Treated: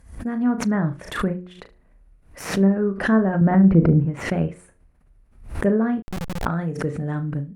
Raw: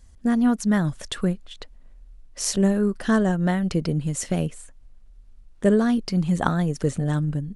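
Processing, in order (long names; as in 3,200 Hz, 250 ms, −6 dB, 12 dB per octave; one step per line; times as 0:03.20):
stylus tracing distortion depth 0.081 ms
automatic gain control gain up to 7.5 dB
0:03.41–0:04.05: low-shelf EQ 320 Hz +10 dB
treble cut that deepens with the level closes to 1,500 Hz, closed at −9 dBFS
high-pass filter 51 Hz 12 dB per octave
flat-topped bell 4,900 Hz −11.5 dB
hum removal 90.28 Hz, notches 7
on a send: flutter between parallel walls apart 6.2 metres, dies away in 0.24 s
0:06.02–0:06.46: on the sum: comparator with hysteresis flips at −18.5 dBFS
background raised ahead of every attack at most 110 dB per second
level −5.5 dB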